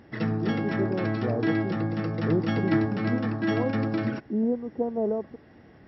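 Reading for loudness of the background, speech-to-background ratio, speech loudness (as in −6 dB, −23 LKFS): −28.0 LKFS, −3.0 dB, −31.0 LKFS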